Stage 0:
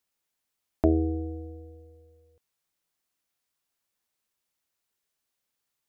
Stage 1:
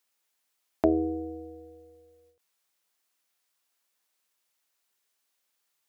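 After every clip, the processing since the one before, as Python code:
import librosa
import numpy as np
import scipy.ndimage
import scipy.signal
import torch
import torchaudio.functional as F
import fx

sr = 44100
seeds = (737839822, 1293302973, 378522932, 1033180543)

y = fx.highpass(x, sr, hz=510.0, slope=6)
y = fx.end_taper(y, sr, db_per_s=140.0)
y = y * 10.0 ** (5.0 / 20.0)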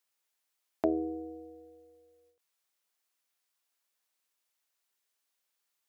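y = fx.peak_eq(x, sr, hz=74.0, db=-9.5, octaves=2.0)
y = y * 10.0 ** (-4.5 / 20.0)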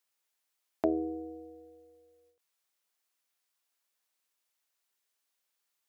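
y = x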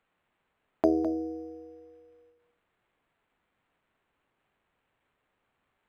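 y = x + 10.0 ** (-10.5 / 20.0) * np.pad(x, (int(208 * sr / 1000.0), 0))[:len(x)]
y = np.interp(np.arange(len(y)), np.arange(len(y))[::8], y[::8])
y = y * 10.0 ** (5.0 / 20.0)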